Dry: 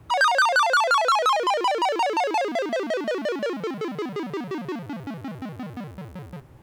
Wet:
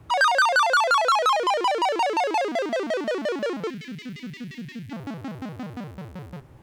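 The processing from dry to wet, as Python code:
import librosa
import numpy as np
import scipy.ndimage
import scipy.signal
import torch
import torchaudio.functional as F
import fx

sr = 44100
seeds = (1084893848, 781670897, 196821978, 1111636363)

y = fx.spec_box(x, sr, start_s=3.7, length_s=1.22, low_hz=270.0, high_hz=1700.0, gain_db=-26)
y = fx.doppler_dist(y, sr, depth_ms=0.23)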